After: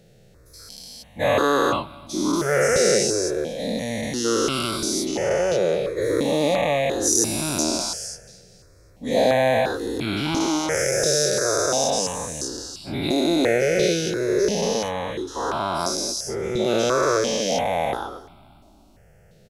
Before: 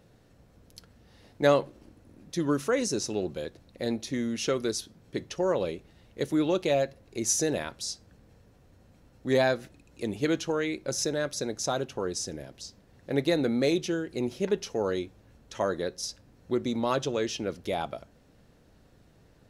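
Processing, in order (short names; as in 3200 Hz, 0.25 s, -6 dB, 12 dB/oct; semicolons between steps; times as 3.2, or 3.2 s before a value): spectral dilation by 0.48 s; feedback echo 0.25 s, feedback 51%, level -23 dB; step phaser 2.9 Hz 280–1800 Hz; gain +2.5 dB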